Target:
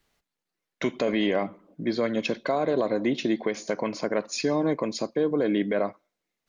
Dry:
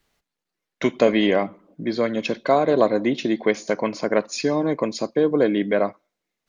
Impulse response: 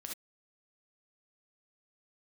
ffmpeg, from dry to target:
-af "alimiter=limit=-13dB:level=0:latency=1:release=74,volume=-2dB"

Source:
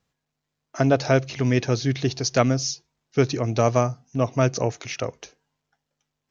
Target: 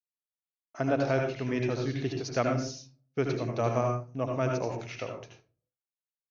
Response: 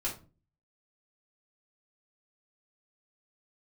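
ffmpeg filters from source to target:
-filter_complex "[0:a]bass=f=250:g=-4,treble=f=4k:g=-9,agate=range=-33dB:threshold=-45dB:ratio=3:detection=peak,asplit=2[a][b];[1:a]atrim=start_sample=2205,adelay=75[c];[b][c]afir=irnorm=-1:irlink=0,volume=-5.5dB[d];[a][d]amix=inputs=2:normalize=0,volume=-8.5dB"

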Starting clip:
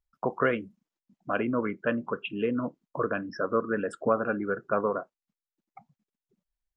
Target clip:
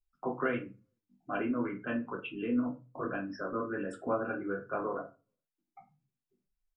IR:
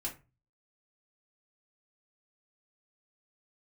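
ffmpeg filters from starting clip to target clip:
-filter_complex "[1:a]atrim=start_sample=2205[a];[0:a][a]afir=irnorm=-1:irlink=0,volume=-6.5dB"

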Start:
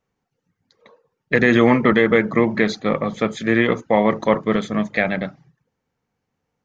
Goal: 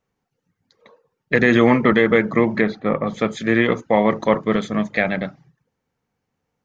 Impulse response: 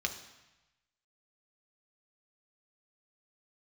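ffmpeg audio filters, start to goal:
-filter_complex "[0:a]asettb=1/sr,asplit=3[a][b][c];[a]atrim=end=2.614[d];[b]atrim=start=2.61:end=3.07,asetpts=PTS-STARTPTS,afade=t=in:d=0.004:c=qsin,afade=t=out:st=0.456:d=0.004:c=qsin,lowpass=2.1k[e];[c]atrim=start=3.066[f];[d][e]acrossfade=d=0.004:c1=hsin:c2=qsin[g];[g][f]acrossfade=d=0.004:c1=qsin:c2=hsin"

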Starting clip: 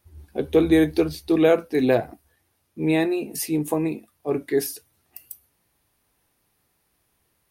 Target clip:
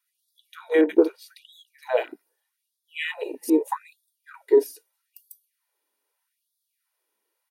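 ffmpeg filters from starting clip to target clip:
-filter_complex "[0:a]afwtdn=0.0282,aecho=1:1:2.1:0.49,acompressor=threshold=-20dB:ratio=4,asettb=1/sr,asplit=3[a][b][c];[a]atrim=end=0.814[d];[b]atrim=start=0.81:end=3.5,asetpts=PTS-STARTPTS,afade=t=in:d=0.004:c=qsin,afade=t=out:st=2.686:d=0.004:c=qsin,acrossover=split=1700[e][f];[f]adelay=80[g];[e][g]amix=inputs=2:normalize=0,atrim=end_sample=118629[h];[c]atrim=start=3.496[i];[d][h]acrossfade=d=0.004:c1=hsin:c2=qsin[j];[j][i]acrossfade=d=0.004:c1=qsin:c2=hsin,afftfilt=real='re*gte(b*sr/1024,210*pow(3400/210,0.5+0.5*sin(2*PI*0.8*pts/sr)))':imag='im*gte(b*sr/1024,210*pow(3400/210,0.5+0.5*sin(2*PI*0.8*pts/sr)))':win_size=1024:overlap=0.75,volume=7.5dB"

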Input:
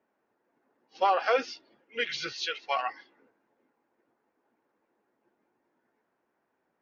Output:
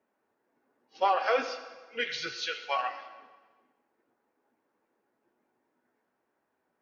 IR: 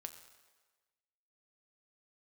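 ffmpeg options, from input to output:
-filter_complex "[1:a]atrim=start_sample=2205[a];[0:a][a]afir=irnorm=-1:irlink=0,volume=3.5dB"

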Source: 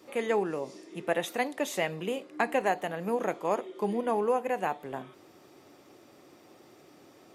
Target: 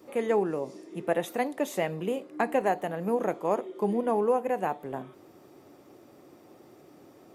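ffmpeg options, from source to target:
-af "equalizer=f=3.8k:w=0.34:g=-8.5,volume=3.5dB"

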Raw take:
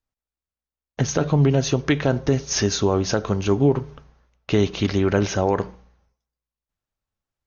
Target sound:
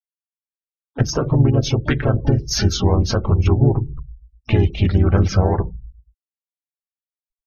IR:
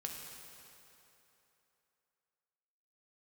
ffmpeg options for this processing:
-filter_complex "[0:a]asplit=2[a][b];[b]acompressor=threshold=-26dB:ratio=6,volume=0dB[c];[a][c]amix=inputs=2:normalize=0,asubboost=boost=7:cutoff=110,asplit=3[d][e][f];[e]asetrate=37084,aresample=44100,atempo=1.18921,volume=0dB[g];[f]asetrate=88200,aresample=44100,atempo=0.5,volume=-13dB[h];[d][g][h]amix=inputs=3:normalize=0,afftfilt=real='re*gte(hypot(re,im),0.0282)':imag='im*gte(hypot(re,im),0.0282)':win_size=1024:overlap=0.75,afftdn=nr=16:nf=-25,volume=-4dB"

